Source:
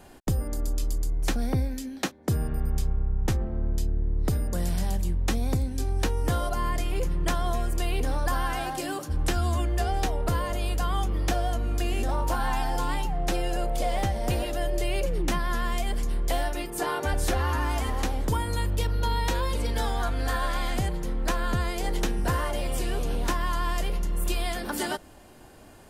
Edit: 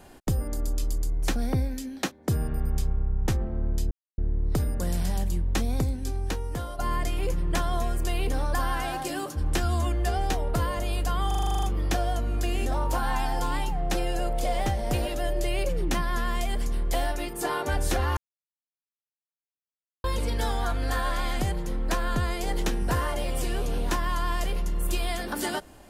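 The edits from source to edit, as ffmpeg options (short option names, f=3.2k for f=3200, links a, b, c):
-filter_complex "[0:a]asplit=14[a][b][c][d][e][f][g][h][i][j][k][l][m][n];[a]atrim=end=3.91,asetpts=PTS-STARTPTS,afade=t=out:st=3.906:d=0.004:c=hsin,apad=pad_dur=0.27[o];[b]atrim=start=3.91:end=6.52,asetpts=PTS-STARTPTS,afade=t=in:d=0.004:c=hsin,afade=t=out:st=1.61:d=1:silence=0.334965[p];[c]atrim=start=6.52:end=11.042,asetpts=PTS-STARTPTS,afade=t=in:d=0.004:c=hsin:silence=0.334965[q];[d]atrim=start=10.998:end=11.042[r];[e]atrim=start=10.998:end=11.042[s];[f]atrim=start=10.998:end=11.042[t];[g]atrim=start=10.998:end=11.042[u];[h]atrim=start=10.998:end=11.042[v];[i]atrim=start=10.998:end=11.042[w];[j]atrim=start=10.998:end=11.042[x];[k]atrim=start=10.998:end=11.042[y];[l]atrim=start=10.998:end=17.54,asetpts=PTS-STARTPTS,afade=t=out:st=6.538:d=0.004:c=hsin[z];[m]atrim=start=17.54:end=19.41,asetpts=PTS-STARTPTS,volume=0[aa];[n]atrim=start=19.41,asetpts=PTS-STARTPTS,afade=t=in:d=0.004:c=hsin[ab];[o][p][q]concat=n=3:v=0:a=1[ac];[ac][r]acrossfade=d=0.004:c1=hsin:c2=hsin[ad];[ad][s]acrossfade=d=0.004:c1=hsin:c2=hsin[ae];[ae][t]acrossfade=d=0.004:c1=hsin:c2=hsin[af];[af][u]acrossfade=d=0.004:c1=hsin:c2=hsin[ag];[ag][v]acrossfade=d=0.004:c1=hsin:c2=hsin[ah];[ah][w]acrossfade=d=0.004:c1=hsin:c2=hsin[ai];[ai][x]acrossfade=d=0.004:c1=hsin:c2=hsin[aj];[aj][y]acrossfade=d=0.004:c1=hsin:c2=hsin[ak];[z][aa][ab]concat=n=3:v=0:a=1[al];[ak][al]acrossfade=d=0.004:c1=hsin:c2=hsin"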